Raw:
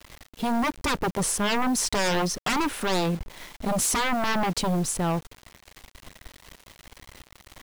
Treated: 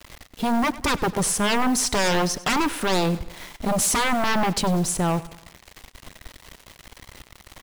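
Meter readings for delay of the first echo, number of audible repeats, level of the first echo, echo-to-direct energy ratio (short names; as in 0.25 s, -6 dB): 97 ms, 3, -18.0 dB, -17.0 dB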